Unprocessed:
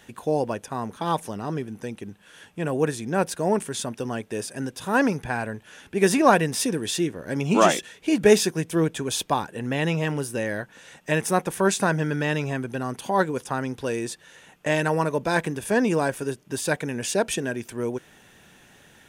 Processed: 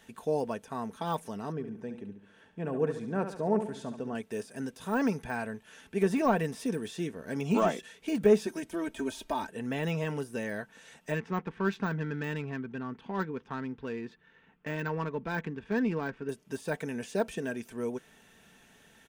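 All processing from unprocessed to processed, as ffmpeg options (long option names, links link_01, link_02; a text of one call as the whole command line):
ffmpeg -i in.wav -filter_complex "[0:a]asettb=1/sr,asplit=3[link_01][link_02][link_03];[link_01]atrim=end=1.524[link_04];[link_02]atrim=start=1.52:end=4.15,asetpts=PTS-STARTPTS,afade=type=in:duration=0.004:curve=qsin,afade=type=out:start_time=2.626:duration=0.004:curve=qsin,lowpass=frequency=1100:poles=1,aecho=1:1:70|140|210|280|350:0.355|0.16|0.0718|0.0323|0.0145,atrim=end_sample=115983[link_05];[link_03]atrim=start=4.146[link_06];[link_04][link_05]acrossfade=duration=0.004:curve1=hsin:curve2=qsin[link_07];[link_07][link_06]acrossfade=duration=0.004:curve1=qsin:curve2=hsin,asettb=1/sr,asplit=3[link_08][link_09][link_10];[link_08]atrim=end=8.464[link_11];[link_09]atrim=start=8.46:end=9.49,asetpts=PTS-STARTPTS,afade=type=in:duration=0.004:curve=qsin,afade=type=out:start_time=1.026:duration=0.004:curve=qsin,asubboost=boost=9:cutoff=51,aecho=1:1:3.2:0.99,atrim=end_sample=45423,acompressor=threshold=-21dB:ratio=2.5:attack=3.2:release=140:knee=1:detection=peak[link_12];[link_10]atrim=start=9.486[link_13];[link_11][link_12]acrossfade=duration=0.004:curve1=hsin:curve2=qsin[link_14];[link_14][link_13]acrossfade=duration=0.004:curve1=qsin:curve2=hsin,asettb=1/sr,asplit=3[link_15][link_16][link_17];[link_15]atrim=end=11.144[link_18];[link_16]atrim=start=11.14:end=16.29,asetpts=PTS-STARTPTS,afade=type=in:duration=0.004:curve=qsin,afade=type=out:start_time=5.146:duration=0.004:curve=qsin,lowpass=4100,equalizer=frequency=630:width_type=o:width=0.84:gain=-10,adynamicsmooth=sensitivity=2.5:basefreq=2000[link_19];[link_17]atrim=start=16.286[link_20];[link_18][link_19]acrossfade=duration=0.004:curve1=hsin:curve2=qsin[link_21];[link_21][link_20]acrossfade=duration=0.004:curve1=qsin:curve2=hsin,deesser=0.9,aecho=1:1:4.5:0.4,volume=-7dB" out.wav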